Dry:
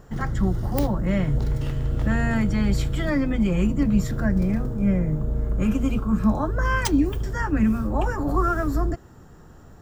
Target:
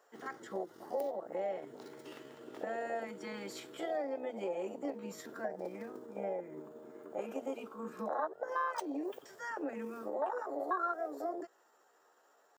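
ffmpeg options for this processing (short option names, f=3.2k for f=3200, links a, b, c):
-af "afwtdn=0.0794,highpass=f=490:w=0.5412,highpass=f=490:w=1.3066,acompressor=threshold=-41dB:ratio=3,atempo=0.78,volume=5dB"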